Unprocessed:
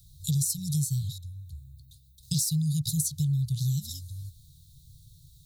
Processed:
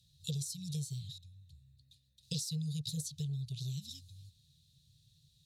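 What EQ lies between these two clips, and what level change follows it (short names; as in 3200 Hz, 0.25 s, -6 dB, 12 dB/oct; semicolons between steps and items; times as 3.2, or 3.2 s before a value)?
vowel filter e; +16.0 dB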